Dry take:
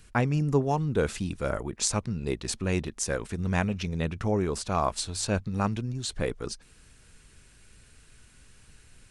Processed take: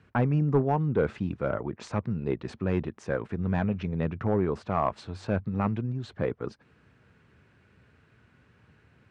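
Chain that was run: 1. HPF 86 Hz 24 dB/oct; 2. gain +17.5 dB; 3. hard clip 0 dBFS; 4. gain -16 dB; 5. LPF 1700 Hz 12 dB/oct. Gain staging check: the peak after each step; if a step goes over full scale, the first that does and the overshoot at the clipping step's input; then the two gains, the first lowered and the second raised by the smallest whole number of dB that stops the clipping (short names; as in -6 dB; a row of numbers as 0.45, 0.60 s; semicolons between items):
-8.0, +9.5, 0.0, -16.0, -15.5 dBFS; step 2, 9.5 dB; step 2 +7.5 dB, step 4 -6 dB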